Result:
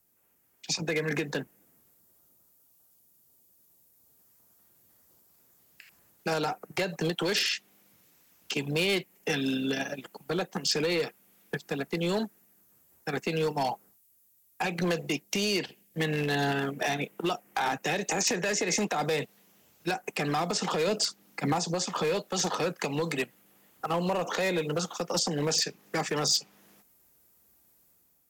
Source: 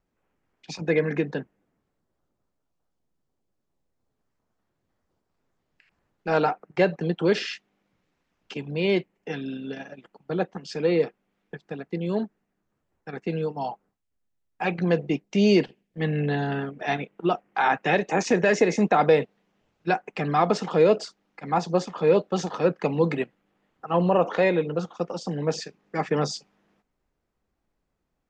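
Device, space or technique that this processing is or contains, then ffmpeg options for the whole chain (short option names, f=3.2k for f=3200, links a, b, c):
FM broadcast chain: -filter_complex "[0:a]highpass=70,dynaudnorm=f=870:g=3:m=6.5dB,acrossover=split=250|690|4600[a][b][c][d];[a]acompressor=threshold=-33dB:ratio=4[e];[b]acompressor=threshold=-28dB:ratio=4[f];[c]acompressor=threshold=-28dB:ratio=4[g];[d]acompressor=threshold=-45dB:ratio=4[h];[e][f][g][h]amix=inputs=4:normalize=0,aemphasis=mode=production:type=50fm,alimiter=limit=-18.5dB:level=0:latency=1:release=141,asoftclip=type=hard:threshold=-22.5dB,lowpass=f=15k:w=0.5412,lowpass=f=15k:w=1.3066,aemphasis=mode=production:type=50fm,asettb=1/sr,asplit=3[i][j][k];[i]atrim=end=20.874[l];[j]atrim=start=20.87:end=21.53,asetpts=PTS-STARTPTS,afade=t=in:d=0.004:c=qsin,afade=t=out:st=0.656:d=0.004:c=qsin,equalizer=f=190:t=o:w=1.9:g=6[m];[k]atrim=start=21.526[n];[l][m]acrossfade=d=0.004:c1=hsin:c2=qsin[o];[o][n]acrossfade=d=0.004:c1=qsin:c2=hsin"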